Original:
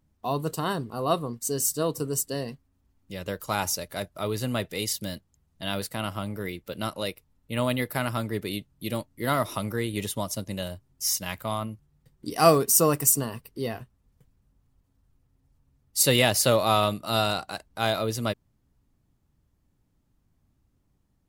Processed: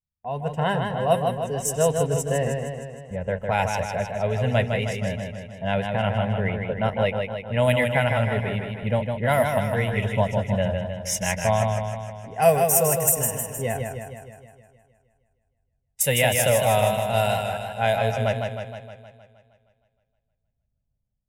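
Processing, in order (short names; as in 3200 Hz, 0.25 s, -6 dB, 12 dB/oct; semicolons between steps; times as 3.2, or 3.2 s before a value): low-pass opened by the level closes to 520 Hz, open at -19.5 dBFS; gate with hold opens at -39 dBFS; AGC gain up to 14.5 dB; fixed phaser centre 1200 Hz, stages 6; warbling echo 0.156 s, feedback 59%, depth 56 cents, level -5 dB; gain -2 dB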